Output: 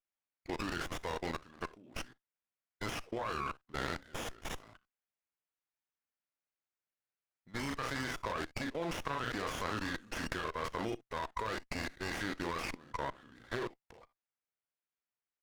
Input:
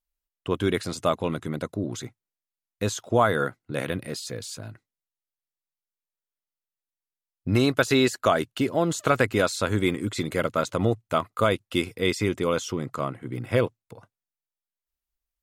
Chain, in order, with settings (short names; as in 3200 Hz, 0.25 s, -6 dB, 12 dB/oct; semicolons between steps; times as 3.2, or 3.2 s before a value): band-pass 2900 Hz, Q 0.86; on a send: early reflections 36 ms -8 dB, 61 ms -14.5 dB, 76 ms -18 dB; on the sum: level quantiser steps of 21 dB; formant shift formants -4 st; running maximum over 9 samples; gain +6 dB